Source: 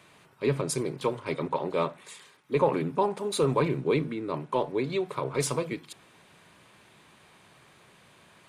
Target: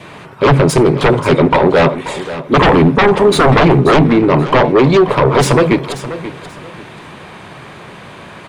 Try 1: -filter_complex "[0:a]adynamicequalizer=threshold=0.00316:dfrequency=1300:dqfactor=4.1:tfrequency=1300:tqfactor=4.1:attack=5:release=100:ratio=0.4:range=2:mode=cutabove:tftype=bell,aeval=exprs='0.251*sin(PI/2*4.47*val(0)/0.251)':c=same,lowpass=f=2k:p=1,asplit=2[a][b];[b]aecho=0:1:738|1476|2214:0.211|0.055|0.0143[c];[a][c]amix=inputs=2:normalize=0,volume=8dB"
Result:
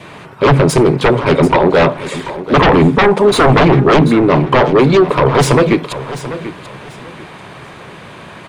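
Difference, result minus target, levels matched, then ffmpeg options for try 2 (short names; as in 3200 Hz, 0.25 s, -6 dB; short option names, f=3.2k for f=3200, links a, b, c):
echo 0.205 s late
-filter_complex "[0:a]adynamicequalizer=threshold=0.00316:dfrequency=1300:dqfactor=4.1:tfrequency=1300:tqfactor=4.1:attack=5:release=100:ratio=0.4:range=2:mode=cutabove:tftype=bell,aeval=exprs='0.251*sin(PI/2*4.47*val(0)/0.251)':c=same,lowpass=f=2k:p=1,asplit=2[a][b];[b]aecho=0:1:533|1066|1599:0.211|0.055|0.0143[c];[a][c]amix=inputs=2:normalize=0,volume=8dB"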